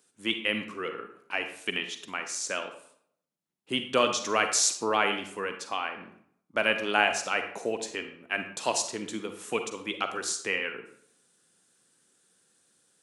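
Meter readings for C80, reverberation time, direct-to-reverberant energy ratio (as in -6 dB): 11.5 dB, 0.65 s, 7.0 dB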